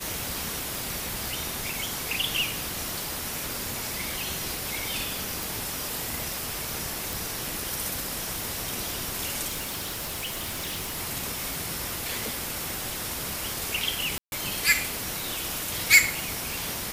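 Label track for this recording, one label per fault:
0.750000	0.750000	pop
3.460000	3.460000	pop
5.430000	5.430000	pop
7.130000	7.130000	pop
9.470000	10.970000	clipped -28.5 dBFS
14.180000	14.320000	gap 0.141 s

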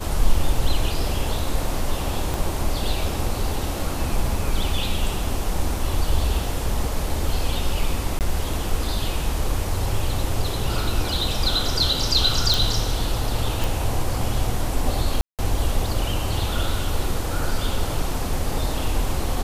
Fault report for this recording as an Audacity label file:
2.340000	2.340000	pop
8.190000	8.210000	gap 18 ms
12.540000	12.540000	pop
13.640000	13.640000	pop
15.210000	15.390000	gap 0.177 s

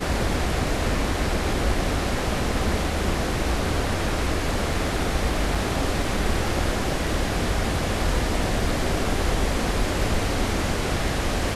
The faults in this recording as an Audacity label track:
5.550000	5.550000	gap 4.3 ms

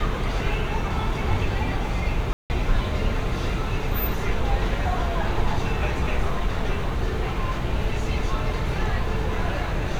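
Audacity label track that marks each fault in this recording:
2.330000	2.500000	gap 0.169 s

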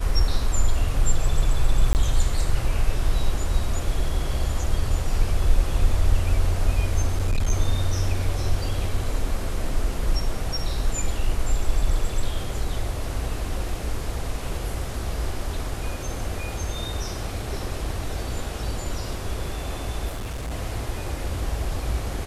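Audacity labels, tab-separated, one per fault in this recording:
1.930000	1.950000	gap 19 ms
7.090000	7.520000	clipped -17 dBFS
20.080000	20.520000	clipped -27 dBFS

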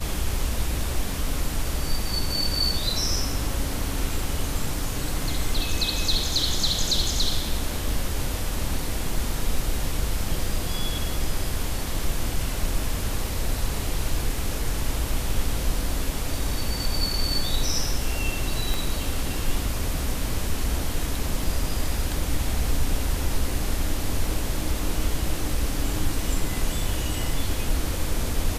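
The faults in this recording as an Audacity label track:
18.740000	18.740000	pop

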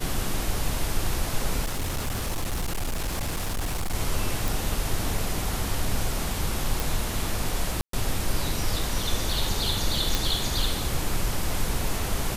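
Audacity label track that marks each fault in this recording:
1.640000	3.950000	clipped -24 dBFS
4.480000	4.480000	pop
6.800000	6.800000	pop
7.810000	7.930000	gap 0.123 s
10.150000	10.150000	pop

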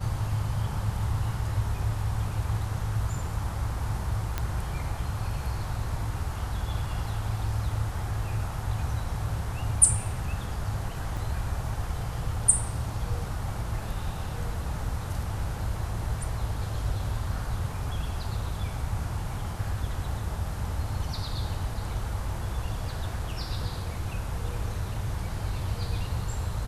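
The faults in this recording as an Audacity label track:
4.380000	4.380000	pop -14 dBFS
11.170000	11.170000	gap 3.6 ms

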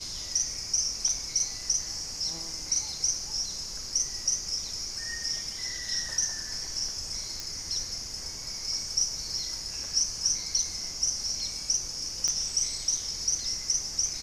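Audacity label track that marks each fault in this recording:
7.400000	7.400000	pop
12.280000	12.280000	pop -16 dBFS

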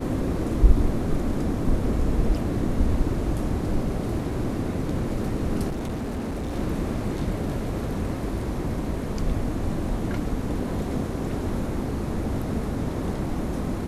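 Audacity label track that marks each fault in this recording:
5.680000	6.560000	clipped -26 dBFS

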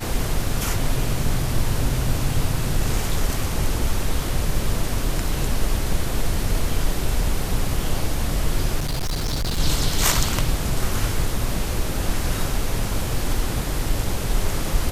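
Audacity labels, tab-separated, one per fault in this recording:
8.790000	9.600000	clipped -20 dBFS

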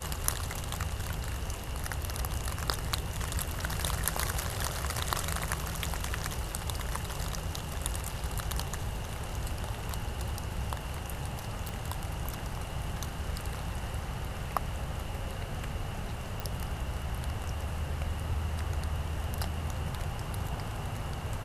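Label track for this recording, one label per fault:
11.690000	11.690000	pop
16.400000	16.400000	pop

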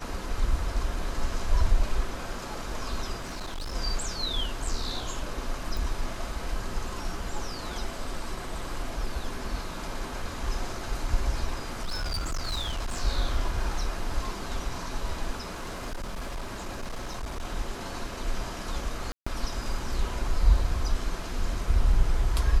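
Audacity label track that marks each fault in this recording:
3.190000	3.730000	clipped -31 dBFS
5.770000	5.770000	pop
11.580000	13.010000	clipped -26.5 dBFS
15.430000	17.450000	clipped -30 dBFS
19.120000	19.270000	gap 0.145 s

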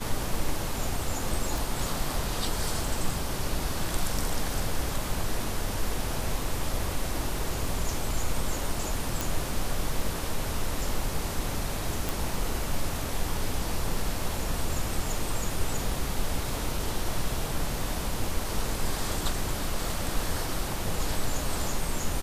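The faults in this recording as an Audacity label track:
1.580000	1.580000	pop
9.210000	9.210000	pop
12.090000	12.090000	pop

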